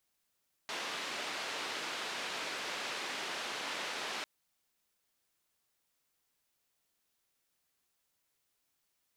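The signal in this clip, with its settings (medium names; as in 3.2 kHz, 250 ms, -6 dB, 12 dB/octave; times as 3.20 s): noise band 300–3500 Hz, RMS -39.5 dBFS 3.55 s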